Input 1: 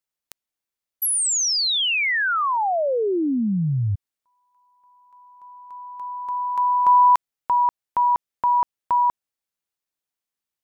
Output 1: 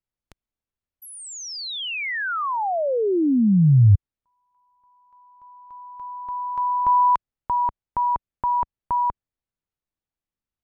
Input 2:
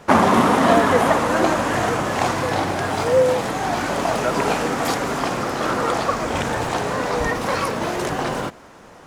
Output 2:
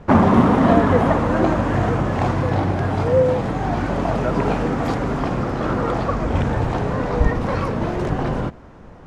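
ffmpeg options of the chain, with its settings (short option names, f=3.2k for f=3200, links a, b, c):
-af "aemphasis=mode=reproduction:type=riaa,volume=-3dB"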